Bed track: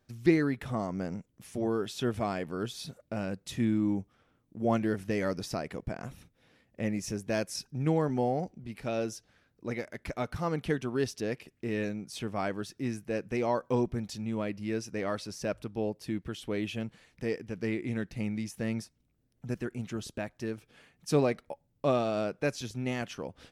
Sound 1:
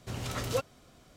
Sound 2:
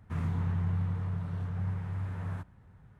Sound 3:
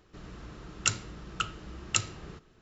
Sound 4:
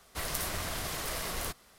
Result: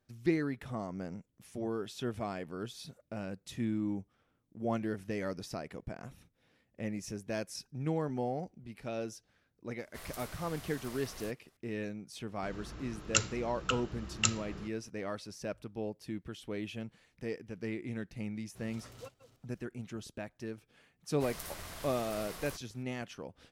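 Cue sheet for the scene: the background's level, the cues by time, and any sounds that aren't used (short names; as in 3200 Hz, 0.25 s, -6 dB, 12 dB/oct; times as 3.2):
bed track -6 dB
9.79 add 4 -13 dB
12.29 add 3 -1.5 dB
18.48 add 1 -18 dB + reverse delay 0.221 s, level -13 dB
21.05 add 4 -10 dB
not used: 2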